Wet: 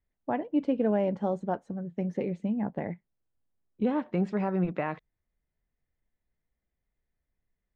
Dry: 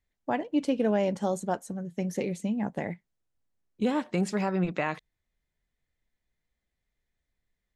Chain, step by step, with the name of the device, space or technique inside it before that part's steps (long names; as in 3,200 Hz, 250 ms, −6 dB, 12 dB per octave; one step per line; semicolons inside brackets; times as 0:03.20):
phone in a pocket (low-pass filter 3,200 Hz 12 dB per octave; high-shelf EQ 2,000 Hz −10.5 dB)